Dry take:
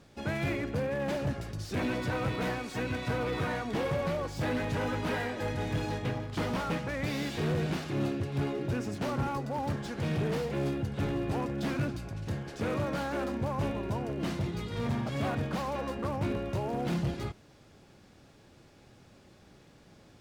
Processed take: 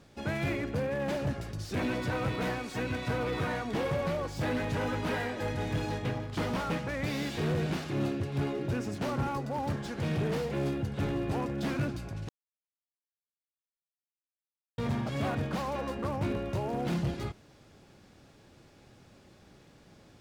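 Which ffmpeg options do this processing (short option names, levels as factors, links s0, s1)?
-filter_complex "[0:a]asplit=3[s0][s1][s2];[s0]atrim=end=12.29,asetpts=PTS-STARTPTS,afade=t=out:st=12.286:d=0.004:c=hsin[s3];[s1]atrim=start=12.29:end=14.78,asetpts=PTS-STARTPTS,volume=0[s4];[s2]atrim=start=14.78,asetpts=PTS-STARTPTS,afade=t=in:d=0.004:c=hsin[s5];[s3][s4][s5]concat=n=3:v=0:a=1"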